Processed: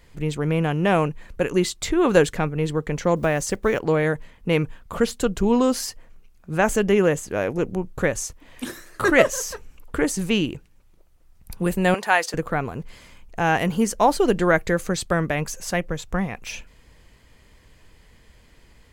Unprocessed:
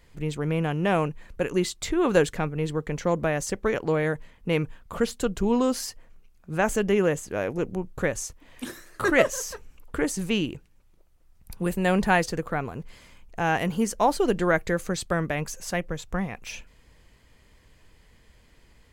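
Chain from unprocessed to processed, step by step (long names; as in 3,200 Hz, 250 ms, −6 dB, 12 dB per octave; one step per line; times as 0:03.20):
0:03.16–0:03.81: one scale factor per block 7 bits
0:11.94–0:12.34: high-pass filter 620 Hz 12 dB per octave
level +4 dB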